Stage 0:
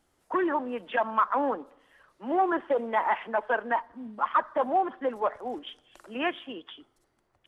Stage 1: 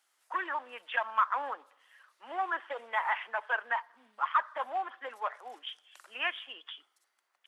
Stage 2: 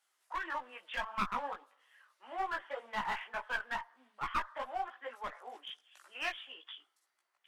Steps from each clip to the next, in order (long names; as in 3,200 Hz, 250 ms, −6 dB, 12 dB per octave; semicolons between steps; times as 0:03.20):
high-pass filter 1,300 Hz 12 dB per octave; level +1.5 dB
asymmetric clip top −31 dBFS; multi-voice chorus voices 6, 1.5 Hz, delay 18 ms, depth 3 ms; level −1 dB